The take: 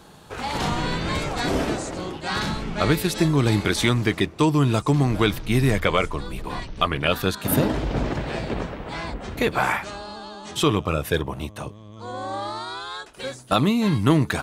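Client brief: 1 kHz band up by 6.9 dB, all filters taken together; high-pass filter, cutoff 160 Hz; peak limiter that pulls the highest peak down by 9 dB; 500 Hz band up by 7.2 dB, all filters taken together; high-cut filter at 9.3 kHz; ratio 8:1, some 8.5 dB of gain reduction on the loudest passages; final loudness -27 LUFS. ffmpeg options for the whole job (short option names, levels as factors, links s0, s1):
-af "highpass=160,lowpass=9300,equalizer=f=500:t=o:g=7.5,equalizer=f=1000:t=o:g=6.5,acompressor=threshold=0.126:ratio=8,volume=0.891,alimiter=limit=0.188:level=0:latency=1"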